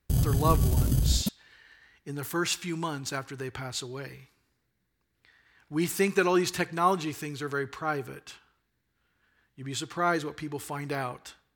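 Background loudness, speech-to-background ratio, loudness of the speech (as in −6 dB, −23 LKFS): −27.0 LKFS, −3.5 dB, −30.5 LKFS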